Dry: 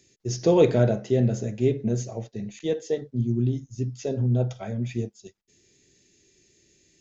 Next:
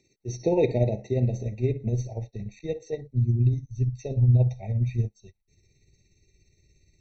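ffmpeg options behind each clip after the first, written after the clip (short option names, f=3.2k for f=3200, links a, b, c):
-af "tremolo=f=17:d=0.44,asubboost=boost=11:cutoff=86,afftfilt=real='re*eq(mod(floor(b*sr/1024/910),2),0)':imag='im*eq(mod(floor(b*sr/1024/910),2),0)':win_size=1024:overlap=0.75,volume=-1.5dB"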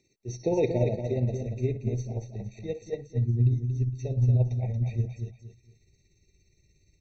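-af "aecho=1:1:231|462|693:0.447|0.125|0.035,volume=-3dB"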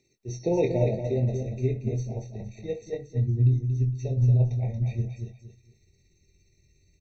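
-filter_complex "[0:a]asplit=2[a][b];[b]adelay=23,volume=-6dB[c];[a][c]amix=inputs=2:normalize=0"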